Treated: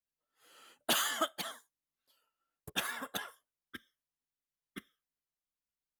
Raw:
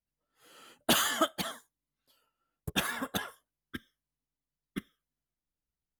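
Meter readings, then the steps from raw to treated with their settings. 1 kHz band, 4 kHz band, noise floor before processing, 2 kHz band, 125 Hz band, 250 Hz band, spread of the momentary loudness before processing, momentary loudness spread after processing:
-4.5 dB, -3.5 dB, under -85 dBFS, -4.0 dB, -12.5 dB, -10.0 dB, 20 LU, 22 LU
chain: low shelf 280 Hz -12 dB; gain -3.5 dB

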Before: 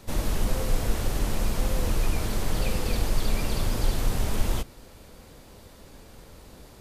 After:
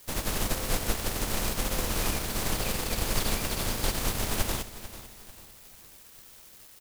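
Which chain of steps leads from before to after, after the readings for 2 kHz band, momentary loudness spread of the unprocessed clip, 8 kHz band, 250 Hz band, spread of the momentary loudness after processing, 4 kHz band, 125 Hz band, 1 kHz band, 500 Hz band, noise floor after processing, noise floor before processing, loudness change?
+3.0 dB, 6 LU, +5.0 dB, -2.5 dB, 19 LU, +3.5 dB, -5.5 dB, +1.0 dB, -1.5 dB, -52 dBFS, -50 dBFS, -0.5 dB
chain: spectral contrast lowered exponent 0.66; added noise blue -38 dBFS; crossover distortion -36.5 dBFS; on a send: feedback echo 0.444 s, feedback 39%, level -14.5 dB; on the sum: gain -5 dB

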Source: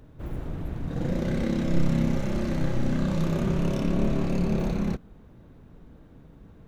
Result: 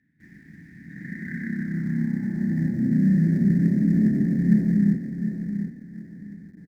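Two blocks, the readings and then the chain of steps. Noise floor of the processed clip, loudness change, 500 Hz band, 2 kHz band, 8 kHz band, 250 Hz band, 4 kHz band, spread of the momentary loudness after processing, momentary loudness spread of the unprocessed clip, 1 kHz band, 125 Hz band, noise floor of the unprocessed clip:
-51 dBFS, +5.0 dB, -9.5 dB, +2.5 dB, n/a, +6.5 dB, under -15 dB, 20 LU, 10 LU, under -15 dB, +3.5 dB, -51 dBFS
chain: HPF 82 Hz 6 dB/oct; notches 60/120/180/240 Hz; on a send: feedback echo 0.73 s, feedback 25%, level -8.5 dB; on the sum: band-pass sweep 2700 Hz -> 570 Hz, 0.73–2.91; resonant low shelf 250 Hz +9.5 dB, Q 3; in parallel at -3 dB: companded quantiser 4-bit; on the sum: EQ curve 150 Hz 0 dB, 310 Hz +11 dB, 560 Hz -23 dB, 830 Hz -20 dB, 1200 Hz -30 dB, 1800 Hz +9 dB, 2800 Hz -28 dB, 4900 Hz -11 dB, 10000 Hz -14 dB; gain +3 dB

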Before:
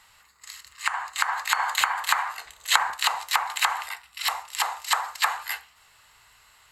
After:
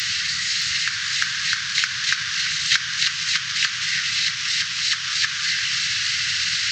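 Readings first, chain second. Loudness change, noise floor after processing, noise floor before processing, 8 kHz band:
+5.5 dB, -28 dBFS, -58 dBFS, +7.5 dB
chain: delta modulation 32 kbps, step -15.5 dBFS; HPF 94 Hz 24 dB/oct; high shelf 3300 Hz +9 dB; split-band echo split 1700 Hz, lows 0.34 s, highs 0.618 s, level -7.5 dB; transient shaper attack +10 dB, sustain -6 dB; elliptic band-stop 160–1600 Hz, stop band 40 dB; gain -4 dB

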